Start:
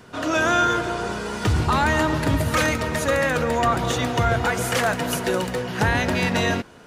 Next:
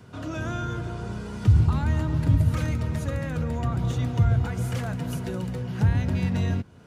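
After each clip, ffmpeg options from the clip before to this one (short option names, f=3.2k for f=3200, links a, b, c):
-filter_complex "[0:a]equalizer=f=100:t=o:w=2.1:g=13,bandreject=f=1.8k:w=19,acrossover=split=250[a][b];[b]acompressor=threshold=-41dB:ratio=1.5[c];[a][c]amix=inputs=2:normalize=0,volume=-7.5dB"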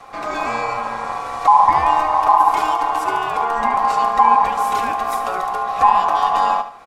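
-af "aeval=exprs='val(0)*sin(2*PI*930*n/s)':c=same,aecho=1:1:73|146|219|292:0.266|0.0958|0.0345|0.0124,alimiter=level_in=11.5dB:limit=-1dB:release=50:level=0:latency=1,volume=-1dB"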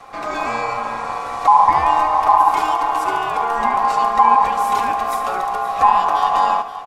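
-af "aecho=1:1:523|1046|1569|2092:0.2|0.0898|0.0404|0.0182"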